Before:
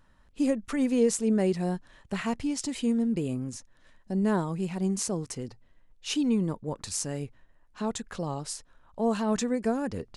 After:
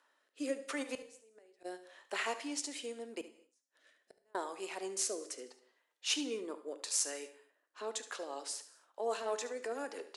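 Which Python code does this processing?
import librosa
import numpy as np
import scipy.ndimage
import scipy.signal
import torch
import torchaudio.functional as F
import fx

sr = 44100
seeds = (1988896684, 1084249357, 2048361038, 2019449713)

y = scipy.signal.sosfilt(scipy.signal.bessel(8, 590.0, 'highpass', norm='mag', fs=sr, output='sos'), x)
y = fx.dynamic_eq(y, sr, hz=1000.0, q=1.2, threshold_db=-41.0, ratio=4.0, max_db=-3)
y = fx.gate_flip(y, sr, shuts_db=-30.0, range_db=-28, at=(0.82, 1.64), fade=0.02)
y = fx.transient(y, sr, attack_db=-8, sustain_db=-3, at=(9.13, 9.79), fade=0.02)
y = fx.rotary_switch(y, sr, hz=0.8, then_hz=6.0, switch_at_s=7.78)
y = fx.gate_flip(y, sr, shuts_db=-46.0, range_db=-36, at=(3.21, 4.35))
y = y + 10.0 ** (-14.5 / 20.0) * np.pad(y, (int(72 * sr / 1000.0), 0))[:len(y)]
y = fx.rev_gated(y, sr, seeds[0], gate_ms=280, shape='falling', drr_db=11.5)
y = F.gain(torch.from_numpy(y), 1.0).numpy()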